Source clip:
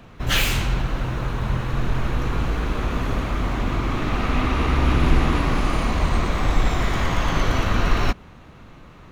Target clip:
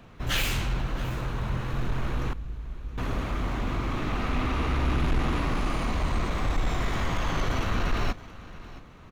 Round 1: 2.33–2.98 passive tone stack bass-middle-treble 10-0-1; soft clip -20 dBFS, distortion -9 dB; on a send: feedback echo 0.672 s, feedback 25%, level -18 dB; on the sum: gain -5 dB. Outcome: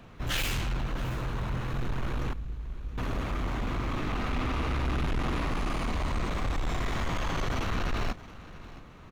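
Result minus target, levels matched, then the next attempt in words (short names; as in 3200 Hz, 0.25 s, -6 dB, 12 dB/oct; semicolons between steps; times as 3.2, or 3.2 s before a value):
soft clip: distortion +7 dB
2.33–2.98 passive tone stack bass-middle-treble 10-0-1; soft clip -12.5 dBFS, distortion -17 dB; on a send: feedback echo 0.672 s, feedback 25%, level -18 dB; on the sum: gain -5 dB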